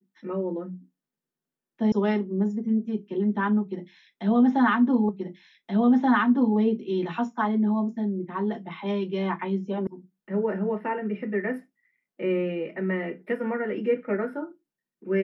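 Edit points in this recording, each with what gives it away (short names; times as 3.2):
1.92 sound cut off
5.09 repeat of the last 1.48 s
9.87 sound cut off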